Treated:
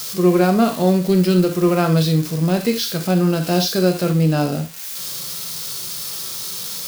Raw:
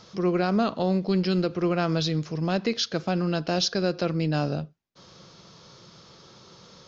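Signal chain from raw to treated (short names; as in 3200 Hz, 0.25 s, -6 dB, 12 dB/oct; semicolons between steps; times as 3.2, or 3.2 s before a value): switching spikes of -25.5 dBFS; harmonic-percussive split harmonic +8 dB; reverb, pre-delay 3 ms, DRR 5.5 dB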